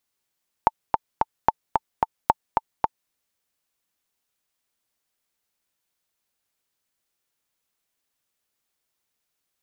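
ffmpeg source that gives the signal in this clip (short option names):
-f lavfi -i "aevalsrc='pow(10,(-2-3.5*gte(mod(t,3*60/221),60/221))/20)*sin(2*PI*888*mod(t,60/221))*exp(-6.91*mod(t,60/221)/0.03)':d=2.44:s=44100"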